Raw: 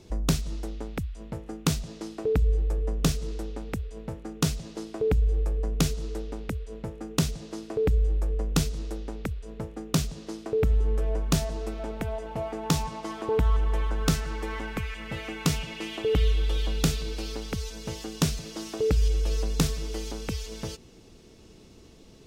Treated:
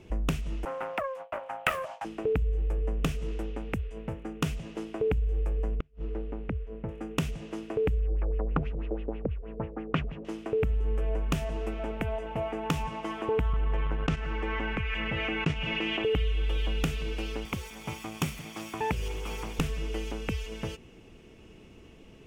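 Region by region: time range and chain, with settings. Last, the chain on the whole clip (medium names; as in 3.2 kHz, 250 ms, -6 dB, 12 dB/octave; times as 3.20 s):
0.65–2.05 s: gate with hold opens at -30 dBFS, closes at -36 dBFS + frequency shift +480 Hz + loudspeaker Doppler distortion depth 0.67 ms
5.75–6.89 s: inverted gate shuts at -16 dBFS, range -37 dB + tape spacing loss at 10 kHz 33 dB
8.00–10.25 s: LFO low-pass sine 6.2 Hz 500–2900 Hz + tape noise reduction on one side only decoder only
13.53–16.04 s: gate -25 dBFS, range -25 dB + distance through air 110 m + level flattener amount 70%
17.45–19.59 s: comb filter that takes the minimum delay 0.89 ms + high-pass 96 Hz + treble shelf 6.8 kHz +6.5 dB
whole clip: compression, threshold -24 dBFS; resonant high shelf 3.4 kHz -6.5 dB, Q 3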